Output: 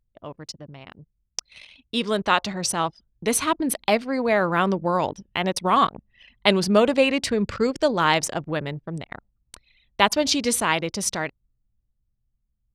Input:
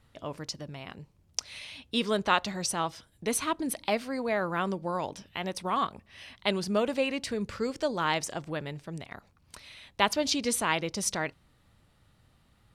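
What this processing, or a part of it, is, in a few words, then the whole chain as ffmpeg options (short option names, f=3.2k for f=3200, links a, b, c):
voice memo with heavy noise removal: -af "anlmdn=0.251,dynaudnorm=f=380:g=11:m=11.5dB"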